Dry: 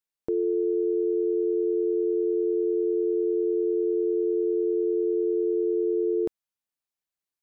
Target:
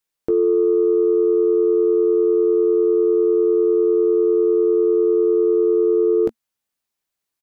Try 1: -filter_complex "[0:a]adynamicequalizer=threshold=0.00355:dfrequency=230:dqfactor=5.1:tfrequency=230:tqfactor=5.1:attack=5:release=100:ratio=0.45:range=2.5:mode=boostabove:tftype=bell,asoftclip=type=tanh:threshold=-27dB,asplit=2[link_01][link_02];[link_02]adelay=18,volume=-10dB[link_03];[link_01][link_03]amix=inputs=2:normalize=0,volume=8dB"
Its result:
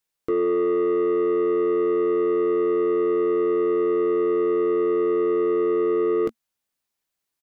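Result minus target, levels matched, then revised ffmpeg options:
soft clipping: distortion +16 dB
-filter_complex "[0:a]adynamicequalizer=threshold=0.00355:dfrequency=230:dqfactor=5.1:tfrequency=230:tqfactor=5.1:attack=5:release=100:ratio=0.45:range=2.5:mode=boostabove:tftype=bell,asoftclip=type=tanh:threshold=-15.5dB,asplit=2[link_01][link_02];[link_02]adelay=18,volume=-10dB[link_03];[link_01][link_03]amix=inputs=2:normalize=0,volume=8dB"

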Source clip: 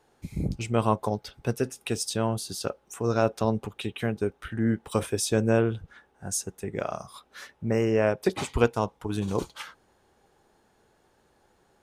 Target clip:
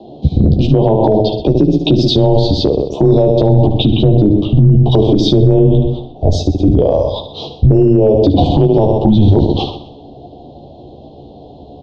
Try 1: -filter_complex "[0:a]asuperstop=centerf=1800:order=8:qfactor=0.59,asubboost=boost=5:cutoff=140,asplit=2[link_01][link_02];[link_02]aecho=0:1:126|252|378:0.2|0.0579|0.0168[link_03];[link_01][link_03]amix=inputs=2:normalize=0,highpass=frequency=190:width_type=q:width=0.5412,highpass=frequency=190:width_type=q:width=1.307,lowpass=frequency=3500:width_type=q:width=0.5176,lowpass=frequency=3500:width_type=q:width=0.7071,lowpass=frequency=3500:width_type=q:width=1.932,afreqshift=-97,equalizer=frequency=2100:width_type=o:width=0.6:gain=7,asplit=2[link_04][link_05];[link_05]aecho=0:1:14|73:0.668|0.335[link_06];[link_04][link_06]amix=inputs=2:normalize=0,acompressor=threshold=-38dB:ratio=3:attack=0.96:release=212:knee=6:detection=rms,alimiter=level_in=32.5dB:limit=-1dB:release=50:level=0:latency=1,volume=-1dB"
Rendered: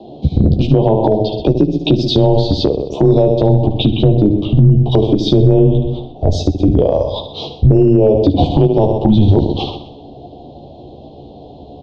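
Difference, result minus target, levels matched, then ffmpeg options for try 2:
downward compressor: peak gain reduction +6.5 dB; 2,000 Hz band +2.0 dB
-filter_complex "[0:a]asuperstop=centerf=1800:order=8:qfactor=0.59,asubboost=boost=5:cutoff=140,asplit=2[link_01][link_02];[link_02]aecho=0:1:126|252|378:0.2|0.0579|0.0168[link_03];[link_01][link_03]amix=inputs=2:normalize=0,highpass=frequency=190:width_type=q:width=0.5412,highpass=frequency=190:width_type=q:width=1.307,lowpass=frequency=3500:width_type=q:width=0.5176,lowpass=frequency=3500:width_type=q:width=0.7071,lowpass=frequency=3500:width_type=q:width=1.932,afreqshift=-97,asplit=2[link_04][link_05];[link_05]aecho=0:1:14|73:0.668|0.335[link_06];[link_04][link_06]amix=inputs=2:normalize=0,acompressor=threshold=-28dB:ratio=3:attack=0.96:release=212:knee=6:detection=rms,alimiter=level_in=32.5dB:limit=-1dB:release=50:level=0:latency=1,volume=-1dB"

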